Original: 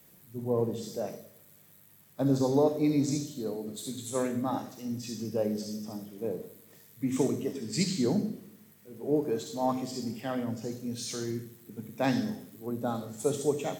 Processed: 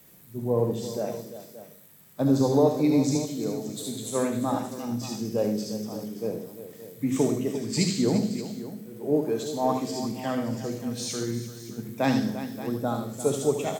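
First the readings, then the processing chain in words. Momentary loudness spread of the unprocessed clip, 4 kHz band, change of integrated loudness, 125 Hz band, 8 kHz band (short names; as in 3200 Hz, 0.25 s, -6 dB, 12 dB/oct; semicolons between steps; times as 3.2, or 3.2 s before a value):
13 LU, +4.5 dB, +4.0 dB, +4.5 dB, +4.5 dB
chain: tapped delay 76/347/575 ms -8/-12.5/-14.5 dB; gain +3.5 dB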